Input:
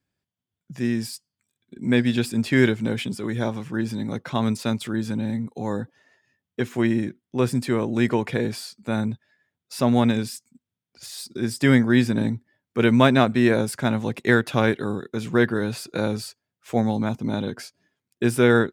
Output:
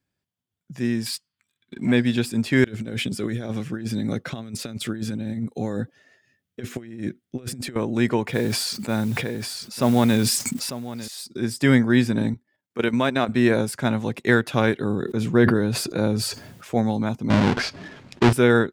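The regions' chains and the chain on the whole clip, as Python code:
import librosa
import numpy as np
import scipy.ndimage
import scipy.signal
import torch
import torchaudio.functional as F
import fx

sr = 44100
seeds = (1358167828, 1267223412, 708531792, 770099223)

y = fx.chain(x, sr, fx.band_shelf(hz=2100.0, db=9.0, octaves=2.3),
    fx.leveller(passes=1), at=(1.06, 1.92))
y = fx.chain(y, sr, fx.peak_eq(hz=950.0, db=-11.0, octaves=0.4),
    fx.over_compress(threshold_db=-28.0, ratio=-0.5), at=(2.64, 7.76))
y = fx.chain(y, sr, fx.echo_single(ms=898, db=-15.5),
    fx.mod_noise(seeds[0], snr_db=24),
    fx.sustainer(db_per_s=21.0), at=(8.27, 11.08))
y = fx.chain(y, sr, fx.highpass(hz=230.0, slope=6),
    fx.level_steps(step_db=10), at=(12.34, 13.29))
y = fx.chain(y, sr, fx.tilt_shelf(db=3.5, hz=630.0),
    fx.sustainer(db_per_s=39.0), at=(14.8, 16.75))
y = fx.chain(y, sr, fx.halfwave_hold(),
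    fx.lowpass(hz=4000.0, slope=12),
    fx.env_flatten(amount_pct=50), at=(17.3, 18.33))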